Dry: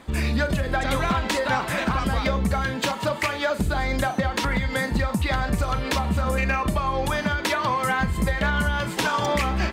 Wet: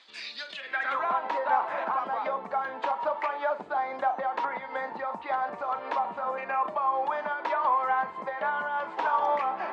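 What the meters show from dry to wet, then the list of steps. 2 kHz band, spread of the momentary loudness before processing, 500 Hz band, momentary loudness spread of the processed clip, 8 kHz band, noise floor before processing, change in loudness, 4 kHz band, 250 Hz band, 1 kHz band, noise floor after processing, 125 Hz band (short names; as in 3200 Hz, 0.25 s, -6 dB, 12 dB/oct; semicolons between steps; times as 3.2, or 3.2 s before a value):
-8.0 dB, 2 LU, -5.5 dB, 7 LU, under -25 dB, -32 dBFS, -5.5 dB, -14.5 dB, -20.5 dB, 0.0 dB, -43 dBFS, under -30 dB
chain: HPF 290 Hz 12 dB/oct; high shelf 11000 Hz -9 dB; reverse; upward compressor, threshold -27 dBFS; reverse; band-pass sweep 4300 Hz -> 870 Hz, 0.46–1.08; air absorption 83 m; gain +3 dB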